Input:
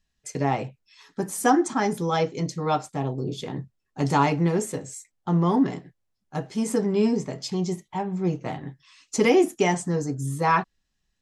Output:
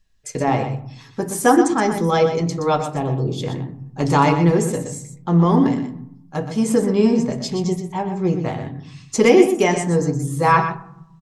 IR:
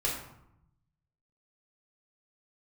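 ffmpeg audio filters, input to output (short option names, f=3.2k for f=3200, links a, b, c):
-filter_complex "[0:a]aecho=1:1:122:0.355,asplit=2[a][b];[1:a]atrim=start_sample=2205,lowpass=2.3k,lowshelf=f=210:g=11[c];[b][c]afir=irnorm=-1:irlink=0,volume=-17dB[d];[a][d]amix=inputs=2:normalize=0,volume=4.5dB"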